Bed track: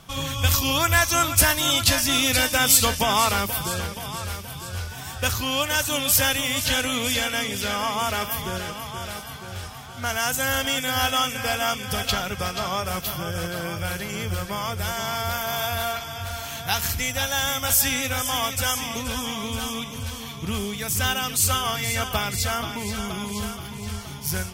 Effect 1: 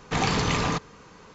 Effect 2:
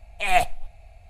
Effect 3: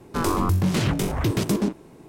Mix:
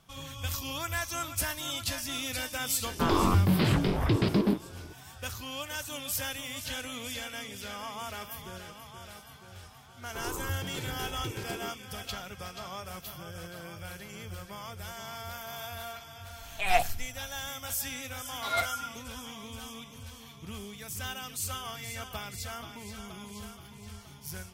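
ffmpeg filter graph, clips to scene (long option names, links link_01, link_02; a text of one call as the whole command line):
ffmpeg -i bed.wav -i cue0.wav -i cue1.wav -i cue2.wav -filter_complex "[3:a]asplit=2[link_01][link_02];[2:a]asplit=2[link_03][link_04];[0:a]volume=-14dB[link_05];[link_01]aresample=11025,aresample=44100[link_06];[link_02]aecho=1:1:2.2:0.66[link_07];[link_04]aeval=exprs='val(0)*sin(2*PI*1400*n/s)':channel_layout=same[link_08];[link_06]atrim=end=2.08,asetpts=PTS-STARTPTS,volume=-2.5dB,afade=type=in:duration=0.004:curve=hsin,afade=type=out:start_time=2.076:duration=0.004:curve=hsin,adelay=2850[link_09];[link_07]atrim=end=2.08,asetpts=PTS-STARTPTS,volume=-16.5dB,afade=type=in:duration=0.004:curve=hsin,afade=type=out:start_time=2.076:duration=0.004:curve=hsin,adelay=10000[link_10];[link_03]atrim=end=1.09,asetpts=PTS-STARTPTS,volume=-5.5dB,afade=type=in:duration=0.004:curve=hsin,afade=type=out:start_time=1.086:duration=0.004:curve=hsin,adelay=16390[link_11];[link_08]atrim=end=1.09,asetpts=PTS-STARTPTS,volume=-9dB,afade=type=in:duration=0.004:curve=hsin,afade=type=out:start_time=1.086:duration=0.004:curve=hsin,adelay=18220[link_12];[link_05][link_09][link_10][link_11][link_12]amix=inputs=5:normalize=0" out.wav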